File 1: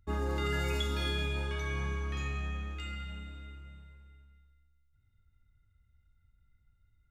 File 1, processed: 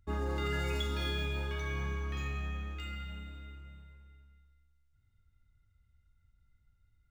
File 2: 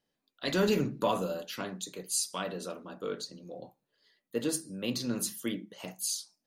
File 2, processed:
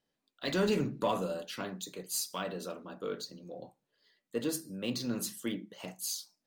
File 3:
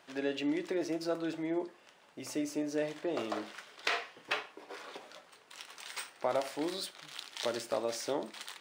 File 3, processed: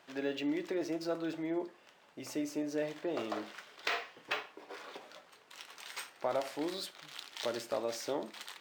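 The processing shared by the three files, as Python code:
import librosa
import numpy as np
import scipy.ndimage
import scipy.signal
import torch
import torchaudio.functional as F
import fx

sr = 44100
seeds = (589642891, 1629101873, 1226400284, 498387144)

p1 = 10.0 ** (-29.0 / 20.0) * np.tanh(x / 10.0 ** (-29.0 / 20.0))
p2 = x + F.gain(torch.from_numpy(p1), -9.0).numpy()
p3 = np.interp(np.arange(len(p2)), np.arange(len(p2))[::2], p2[::2])
y = F.gain(torch.from_numpy(p3), -3.5).numpy()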